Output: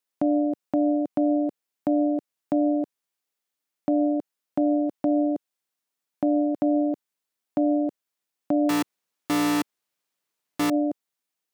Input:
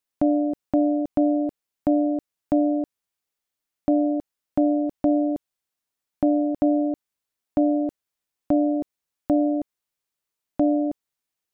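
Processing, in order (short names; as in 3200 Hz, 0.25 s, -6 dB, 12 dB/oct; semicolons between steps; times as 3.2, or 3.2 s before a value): 8.69–10.7 half-waves squared off; HPF 160 Hz 12 dB/oct; limiter -14.5 dBFS, peak gain reduction 9 dB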